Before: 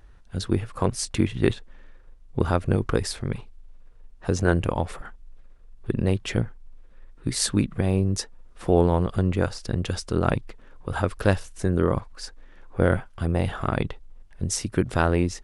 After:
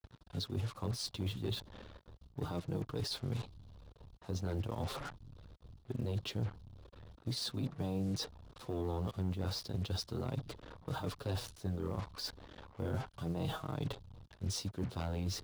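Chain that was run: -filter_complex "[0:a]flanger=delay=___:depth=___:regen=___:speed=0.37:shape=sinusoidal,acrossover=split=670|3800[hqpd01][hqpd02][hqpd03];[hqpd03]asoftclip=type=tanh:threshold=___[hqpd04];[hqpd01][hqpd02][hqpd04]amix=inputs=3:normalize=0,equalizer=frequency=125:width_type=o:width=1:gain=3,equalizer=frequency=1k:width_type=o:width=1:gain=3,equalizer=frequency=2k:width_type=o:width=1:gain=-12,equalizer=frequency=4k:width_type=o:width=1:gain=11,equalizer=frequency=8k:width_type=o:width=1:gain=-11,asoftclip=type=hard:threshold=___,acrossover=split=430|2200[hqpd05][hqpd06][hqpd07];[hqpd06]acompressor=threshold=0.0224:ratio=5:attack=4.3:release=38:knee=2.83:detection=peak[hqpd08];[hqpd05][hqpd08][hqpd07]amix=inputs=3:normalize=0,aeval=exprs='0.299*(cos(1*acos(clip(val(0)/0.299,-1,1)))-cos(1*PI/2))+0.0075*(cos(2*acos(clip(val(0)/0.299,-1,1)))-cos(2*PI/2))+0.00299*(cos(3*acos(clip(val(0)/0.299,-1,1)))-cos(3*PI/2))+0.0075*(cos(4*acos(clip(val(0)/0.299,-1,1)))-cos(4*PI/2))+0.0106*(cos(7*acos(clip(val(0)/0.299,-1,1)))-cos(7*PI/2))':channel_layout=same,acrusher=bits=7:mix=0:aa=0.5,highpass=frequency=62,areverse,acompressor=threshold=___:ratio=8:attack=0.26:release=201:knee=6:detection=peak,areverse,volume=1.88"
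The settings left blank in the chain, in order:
6.3, 4.5, 6, 0.0398, 0.211, 0.0141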